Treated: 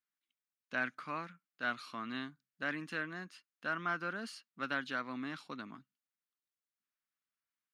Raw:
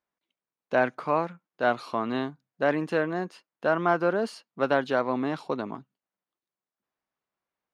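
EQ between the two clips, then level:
low-shelf EQ 270 Hz −11.5 dB
flat-topped bell 600 Hz −14 dB
−5.0 dB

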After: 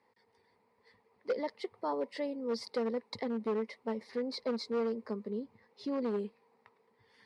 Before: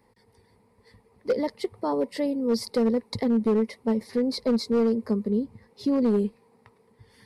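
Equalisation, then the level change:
high-pass filter 810 Hz 6 dB per octave
high-frequency loss of the air 81 metres
high-shelf EQ 4,500 Hz −5 dB
−2.5 dB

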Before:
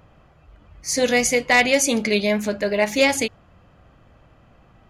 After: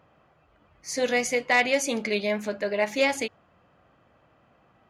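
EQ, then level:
high-pass filter 110 Hz 6 dB per octave
low-pass filter 1,200 Hz 6 dB per octave
spectral tilt +2.5 dB per octave
−2.0 dB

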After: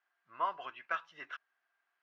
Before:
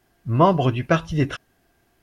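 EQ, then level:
four-pole ladder band-pass 1,600 Hz, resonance 35%
−2.0 dB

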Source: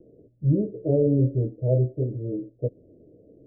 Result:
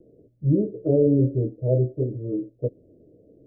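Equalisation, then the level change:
dynamic equaliser 340 Hz, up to +5 dB, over −33 dBFS, Q 1.2
−1.0 dB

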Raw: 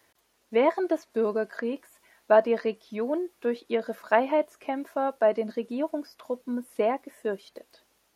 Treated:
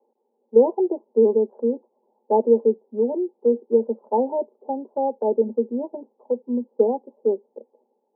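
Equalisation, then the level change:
Chebyshev band-pass filter 220–860 Hz, order 5
dynamic equaliser 310 Hz, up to +4 dB, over −36 dBFS, Q 1.3
phaser with its sweep stopped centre 450 Hz, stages 8
+8.0 dB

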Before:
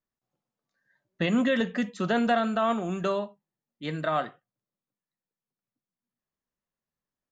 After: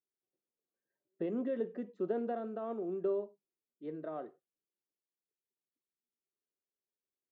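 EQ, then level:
resonant band-pass 390 Hz, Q 4.3
0.0 dB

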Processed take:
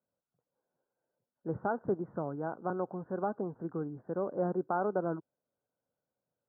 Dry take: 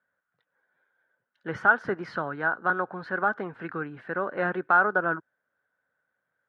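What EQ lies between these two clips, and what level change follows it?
Bessel low-pass filter 600 Hz, order 6
high-frequency loss of the air 200 metres
0.0 dB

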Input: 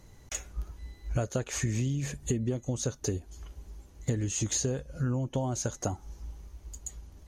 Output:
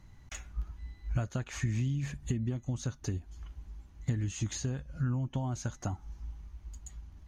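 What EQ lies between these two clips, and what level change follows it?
parametric band 470 Hz −13.5 dB 1 octave
high-shelf EQ 6,000 Hz −10.5 dB
parametric band 8,700 Hz −5 dB 2.1 octaves
0.0 dB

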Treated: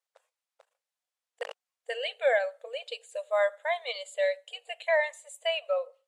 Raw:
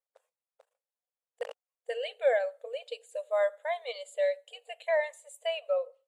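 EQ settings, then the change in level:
Bessel high-pass filter 870 Hz, order 2
high-frequency loss of the air 53 metres
high-shelf EQ 9,100 Hz +6.5 dB
+7.0 dB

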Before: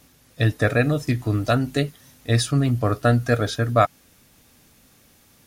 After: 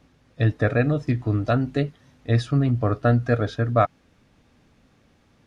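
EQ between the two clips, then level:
head-to-tape spacing loss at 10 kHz 23 dB
0.0 dB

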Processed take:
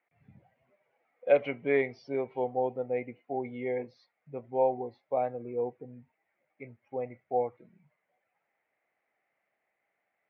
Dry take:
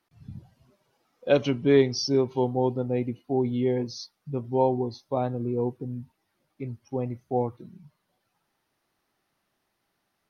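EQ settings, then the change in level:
high-pass filter 240 Hz 6 dB per octave
transistor ladder low-pass 2,300 Hz, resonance 75%
flat-topped bell 600 Hz +9.5 dB 1 octave
+2.0 dB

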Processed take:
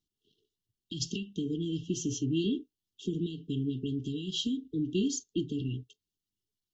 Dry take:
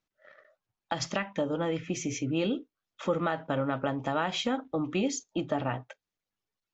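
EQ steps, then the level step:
linear-phase brick-wall band-stop 450–2,700 Hz
parametric band 71 Hz +4.5 dB 1.3 octaves
0.0 dB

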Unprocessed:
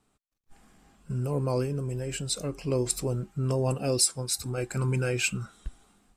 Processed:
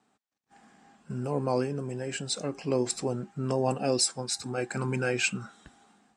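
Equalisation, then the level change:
loudspeaker in its box 170–8,100 Hz, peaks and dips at 230 Hz +5 dB, 790 Hz +8 dB, 1,700 Hz +6 dB
0.0 dB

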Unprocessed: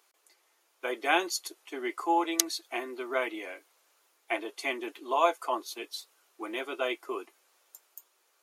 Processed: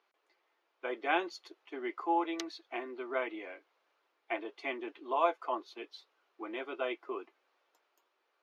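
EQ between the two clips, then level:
high-frequency loss of the air 270 metres
−3.0 dB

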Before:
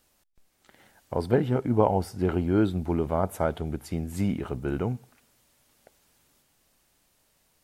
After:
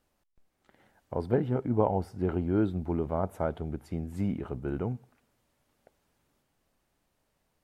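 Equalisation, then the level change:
high-shelf EQ 2,500 Hz −11.5 dB
−3.5 dB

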